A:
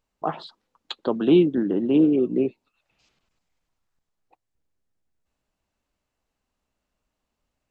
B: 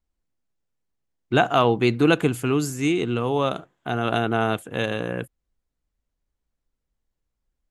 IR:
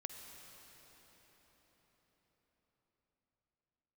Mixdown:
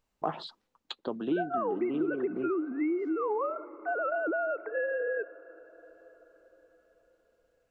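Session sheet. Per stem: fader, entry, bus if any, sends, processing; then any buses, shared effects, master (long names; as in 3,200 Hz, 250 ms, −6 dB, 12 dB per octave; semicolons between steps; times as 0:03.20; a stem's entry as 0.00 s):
−0.5 dB, 0.00 s, no send, automatic ducking −11 dB, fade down 0.80 s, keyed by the second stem
+0.5 dB, 0.00 s, send −9 dB, three sine waves on the formant tracks; downward compressor, threshold −26 dBFS, peak gain reduction 13 dB; Butterworth low-pass 2,200 Hz 72 dB per octave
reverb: on, RT60 5.6 s, pre-delay 45 ms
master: downward compressor 3 to 1, threshold −28 dBFS, peak gain reduction 8 dB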